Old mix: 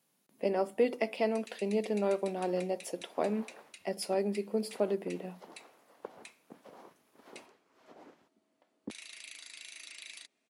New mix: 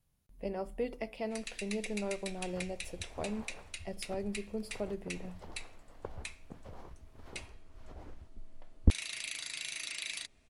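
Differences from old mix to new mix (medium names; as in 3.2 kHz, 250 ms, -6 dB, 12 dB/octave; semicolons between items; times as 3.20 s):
speech -8.0 dB; first sound +8.0 dB; master: remove high-pass 220 Hz 24 dB/octave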